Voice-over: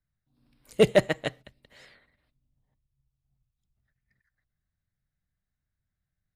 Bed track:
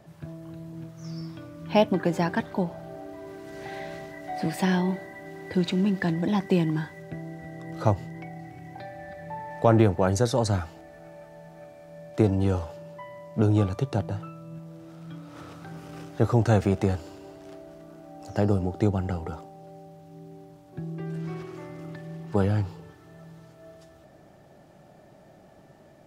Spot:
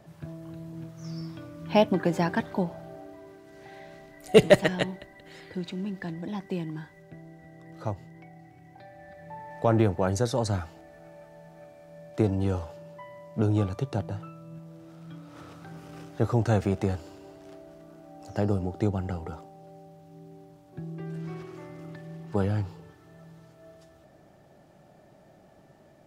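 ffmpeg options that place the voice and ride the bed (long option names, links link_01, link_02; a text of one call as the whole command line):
ffmpeg -i stem1.wav -i stem2.wav -filter_complex "[0:a]adelay=3550,volume=3dB[link_01];[1:a]volume=6dB,afade=type=out:start_time=2.56:duration=0.87:silence=0.354813,afade=type=in:start_time=8.76:duration=1.11:silence=0.473151[link_02];[link_01][link_02]amix=inputs=2:normalize=0" out.wav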